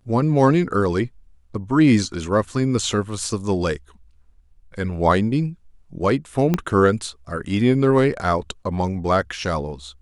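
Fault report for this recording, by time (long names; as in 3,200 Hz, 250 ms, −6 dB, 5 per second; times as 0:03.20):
0:06.54: click −7 dBFS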